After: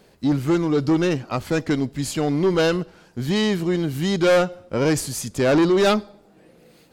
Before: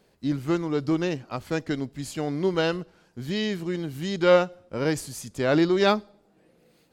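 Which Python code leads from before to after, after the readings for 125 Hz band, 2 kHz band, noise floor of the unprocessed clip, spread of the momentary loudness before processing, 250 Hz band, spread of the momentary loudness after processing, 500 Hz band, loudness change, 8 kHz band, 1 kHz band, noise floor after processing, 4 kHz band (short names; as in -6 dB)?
+6.5 dB, +4.0 dB, -64 dBFS, 12 LU, +6.0 dB, 8 LU, +4.0 dB, +4.5 dB, +9.0 dB, +3.0 dB, -55 dBFS, +4.5 dB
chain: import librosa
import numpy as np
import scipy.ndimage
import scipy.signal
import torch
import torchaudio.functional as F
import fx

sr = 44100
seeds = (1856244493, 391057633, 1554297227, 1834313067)

y = 10.0 ** (-22.0 / 20.0) * np.tanh(x / 10.0 ** (-22.0 / 20.0))
y = F.gain(torch.from_numpy(y), 9.0).numpy()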